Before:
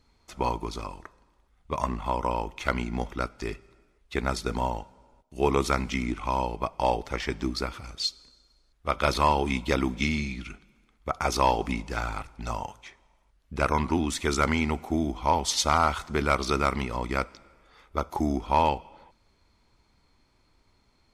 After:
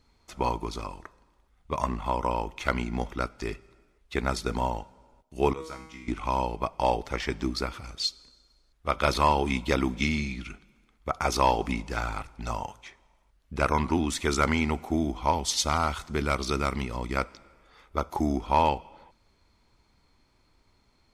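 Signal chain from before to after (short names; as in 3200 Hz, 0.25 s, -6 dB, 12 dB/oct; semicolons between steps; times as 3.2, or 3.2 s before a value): 5.53–6.08 resonator 160 Hz, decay 0.75 s, harmonics all, mix 90%; 15.31–17.17 bell 980 Hz -4.5 dB 2.7 oct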